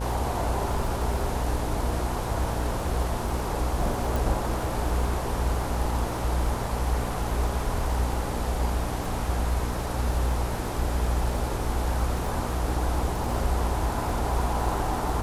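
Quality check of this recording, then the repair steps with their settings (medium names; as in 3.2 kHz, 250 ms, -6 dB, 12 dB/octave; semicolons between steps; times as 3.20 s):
buzz 60 Hz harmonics 16 -31 dBFS
crackle 41 per s -34 dBFS
4.16 s: pop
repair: de-click; de-hum 60 Hz, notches 16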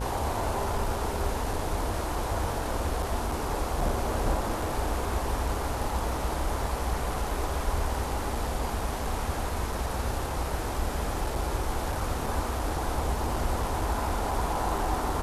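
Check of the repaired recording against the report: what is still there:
nothing left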